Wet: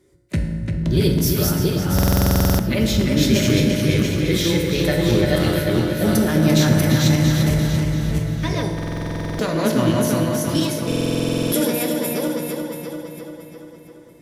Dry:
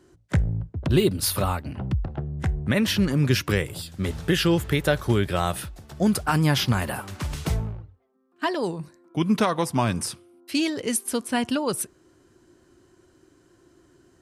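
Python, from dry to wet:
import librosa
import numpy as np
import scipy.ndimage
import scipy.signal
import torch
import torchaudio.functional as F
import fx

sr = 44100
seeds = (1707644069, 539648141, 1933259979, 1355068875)

y = fx.reverse_delay_fb(x, sr, ms=341, feedback_pct=50, wet_db=-0.5)
y = fx.peak_eq(y, sr, hz=920.0, db=-9.0, octaves=1.5)
y = fx.formant_shift(y, sr, semitones=3)
y = fx.echo_filtered(y, sr, ms=344, feedback_pct=60, hz=4900.0, wet_db=-4.5)
y = fx.rev_fdn(y, sr, rt60_s=1.6, lf_ratio=1.1, hf_ratio=0.65, size_ms=10.0, drr_db=2.5)
y = fx.buffer_glitch(y, sr, at_s=(1.94, 8.74, 10.87), block=2048, repeats=13)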